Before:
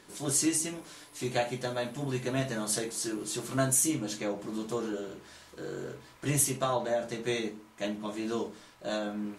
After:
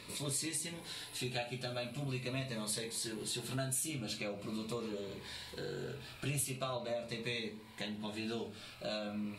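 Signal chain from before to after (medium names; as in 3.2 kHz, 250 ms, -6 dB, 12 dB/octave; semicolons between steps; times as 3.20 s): graphic EQ with 31 bands 100 Hz +11 dB, 315 Hz -7 dB, 2.5 kHz +9 dB, 4 kHz +9 dB, 6.3 kHz -9 dB; compression 2.5:1, threshold -45 dBFS, peak gain reduction 15 dB; Shepard-style phaser falling 0.43 Hz; trim +4.5 dB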